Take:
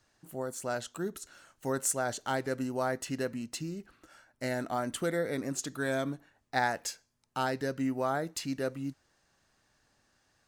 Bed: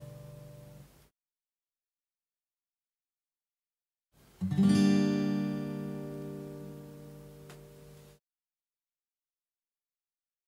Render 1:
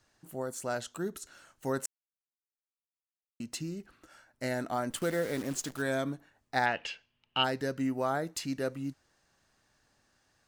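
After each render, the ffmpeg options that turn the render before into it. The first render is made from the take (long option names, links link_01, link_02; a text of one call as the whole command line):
ffmpeg -i in.wav -filter_complex "[0:a]asettb=1/sr,asplit=3[link_01][link_02][link_03];[link_01]atrim=end=4.904[link_04];[link_02]atrim=start=4.9:end=5.82,asetpts=PTS-STARTPTS,afade=type=in:duration=0.004:curve=qsin,afade=type=out:start_time=0.916:duration=0.004:curve=qsin,acrusher=bits=8:dc=4:mix=0:aa=0.000001[link_05];[link_03]atrim=start=5.816[link_06];[link_04][link_05]acrossfade=duration=0.004:curve1=hsin:curve2=qsin[link_07];[link_07][link_06]acrossfade=duration=0.004:curve1=qsin:curve2=hsin,asplit=3[link_08][link_09][link_10];[link_08]afade=type=out:start_time=6.65:duration=0.02[link_11];[link_09]lowpass=frequency=2900:width_type=q:width=9.4,afade=type=in:start_time=6.65:duration=0.02,afade=type=out:start_time=7.43:duration=0.02[link_12];[link_10]afade=type=in:start_time=7.43:duration=0.02[link_13];[link_11][link_12][link_13]amix=inputs=3:normalize=0,asplit=3[link_14][link_15][link_16];[link_14]atrim=end=1.86,asetpts=PTS-STARTPTS,afade=type=out:start_time=1.856:duration=0.004:curve=hsin[link_17];[link_15]atrim=start=1.86:end=3.4,asetpts=PTS-STARTPTS,volume=0[link_18];[link_16]atrim=start=3.4,asetpts=PTS-STARTPTS,afade=type=in:duration=0.004:curve=hsin[link_19];[link_17][link_18][link_19]concat=n=3:v=0:a=1" out.wav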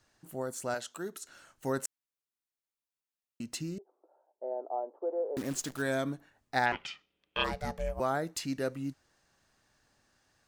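ffmpeg -i in.wav -filter_complex "[0:a]asettb=1/sr,asplit=3[link_01][link_02][link_03];[link_01]atrim=end=0.744[link_04];[link_02]atrim=start=0.74:end=1.28,asetpts=PTS-STARTPTS,afade=type=in:duration=0.004:curve=qsin,afade=type=out:start_time=0.536:duration=0.004:curve=qsin,highpass=frequency=410:poles=1[link_05];[link_03]atrim=start=1.276[link_06];[link_04][link_05]acrossfade=duration=0.004:curve1=hsin:curve2=qsin[link_07];[link_07][link_06]acrossfade=duration=0.004:curve1=qsin:curve2=hsin,asettb=1/sr,asplit=3[link_08][link_09][link_10];[link_08]atrim=end=3.784[link_11];[link_09]atrim=start=3.78:end=5.37,asetpts=PTS-STARTPTS,afade=type=in:duration=0.004:curve=qsin,afade=type=out:start_time=1.586:duration=0.004:curve=qsin,asuperpass=centerf=580:order=8:qfactor=1.1[link_12];[link_10]atrim=start=5.366[link_13];[link_11][link_12]acrossfade=duration=0.004:curve1=hsin:curve2=qsin[link_14];[link_14][link_13]acrossfade=duration=0.004:curve1=qsin:curve2=hsin,asettb=1/sr,asplit=3[link_15][link_16][link_17];[link_15]atrim=end=6.724[link_18];[link_16]atrim=start=6.72:end=8,asetpts=PTS-STARTPTS,afade=type=in:duration=0.004:curve=qsin,afade=type=out:start_time=1.276:duration=0.004:curve=qsin,aeval=exprs='val(0)*sin(2*PI*310*n/s)':channel_layout=same[link_19];[link_17]atrim=start=7.996[link_20];[link_18][link_19]acrossfade=duration=0.004:curve1=hsin:curve2=qsin[link_21];[link_21][link_20]acrossfade=duration=0.004:curve1=qsin:curve2=hsin" out.wav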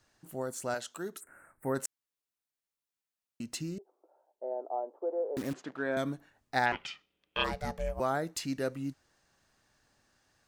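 ffmpeg -i in.wav -filter_complex "[0:a]asplit=3[link_01][link_02][link_03];[link_01]afade=type=out:start_time=1.19:duration=0.02[link_04];[link_02]asuperstop=centerf=4400:order=12:qfactor=0.73,afade=type=in:start_time=1.19:duration=0.02,afade=type=out:start_time=1.74:duration=0.02[link_05];[link_03]afade=type=in:start_time=1.74:duration=0.02[link_06];[link_04][link_05][link_06]amix=inputs=3:normalize=0,asettb=1/sr,asplit=3[link_07][link_08][link_09];[link_07]atrim=end=5.534[link_10];[link_08]atrim=start=5.53:end=5.97,asetpts=PTS-STARTPTS,afade=type=in:duration=0.004:curve=qsin,afade=type=out:start_time=0.436:duration=0.004:curve=qsin,highpass=230,lowpass=2000[link_11];[link_09]atrim=start=5.966[link_12];[link_10][link_11]acrossfade=duration=0.004:curve1=hsin:curve2=qsin[link_13];[link_13][link_12]acrossfade=duration=0.004:curve1=qsin:curve2=hsin" out.wav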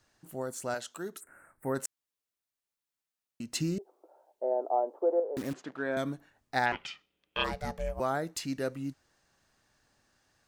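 ffmpeg -i in.wav -filter_complex "[0:a]asettb=1/sr,asplit=3[link_01][link_02][link_03];[link_01]atrim=end=3.554[link_04];[link_02]atrim=start=3.55:end=5.2,asetpts=PTS-STARTPTS,afade=type=in:duration=0.004:curve=qsin,afade=type=out:start_time=1.646:duration=0.004:curve=qsin,acontrast=69[link_05];[link_03]atrim=start=5.196[link_06];[link_04][link_05]acrossfade=duration=0.004:curve1=hsin:curve2=qsin[link_07];[link_07][link_06]acrossfade=duration=0.004:curve1=qsin:curve2=hsin" out.wav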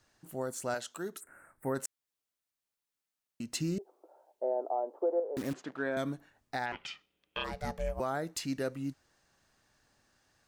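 ffmpeg -i in.wav -af "alimiter=limit=-23dB:level=0:latency=1:release=252" out.wav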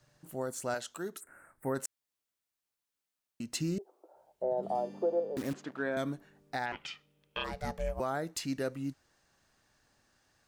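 ffmpeg -i in.wav -i bed.wav -filter_complex "[1:a]volume=-23.5dB[link_01];[0:a][link_01]amix=inputs=2:normalize=0" out.wav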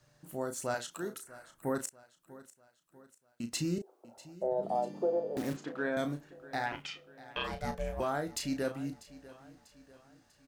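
ffmpeg -i in.wav -filter_complex "[0:a]asplit=2[link_01][link_02];[link_02]adelay=34,volume=-8dB[link_03];[link_01][link_03]amix=inputs=2:normalize=0,aecho=1:1:644|1288|1932|2576:0.119|0.0559|0.0263|0.0123" out.wav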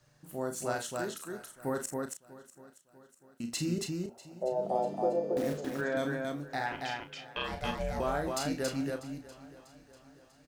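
ffmpeg -i in.wav -af "aecho=1:1:46.65|277:0.355|0.708" out.wav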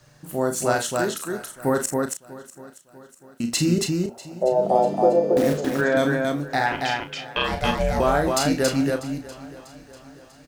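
ffmpeg -i in.wav -af "volume=12dB" out.wav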